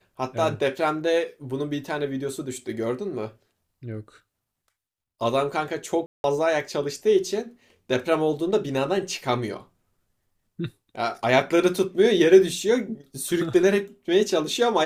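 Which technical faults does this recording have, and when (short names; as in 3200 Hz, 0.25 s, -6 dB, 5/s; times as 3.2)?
6.06–6.24 gap 0.181 s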